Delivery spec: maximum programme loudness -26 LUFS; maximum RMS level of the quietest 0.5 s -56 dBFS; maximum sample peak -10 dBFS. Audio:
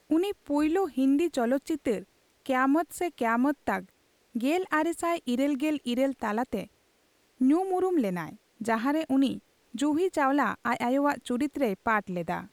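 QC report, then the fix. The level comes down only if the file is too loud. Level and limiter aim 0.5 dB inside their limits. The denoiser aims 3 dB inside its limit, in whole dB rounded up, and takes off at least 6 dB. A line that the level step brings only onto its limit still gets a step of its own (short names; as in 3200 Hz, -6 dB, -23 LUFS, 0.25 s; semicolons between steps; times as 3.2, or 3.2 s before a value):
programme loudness -28.0 LUFS: OK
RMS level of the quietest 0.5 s -67 dBFS: OK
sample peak -12.0 dBFS: OK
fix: none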